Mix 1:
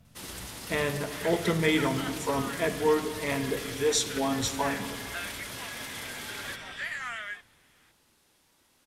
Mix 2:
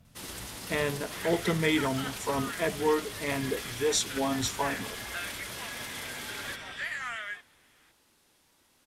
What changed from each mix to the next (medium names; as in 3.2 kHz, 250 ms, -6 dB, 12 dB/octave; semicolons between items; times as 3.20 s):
speech: send off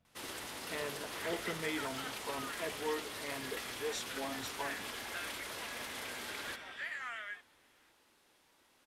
speech -10.5 dB; second sound -6.0 dB; master: add tone controls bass -8 dB, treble -6 dB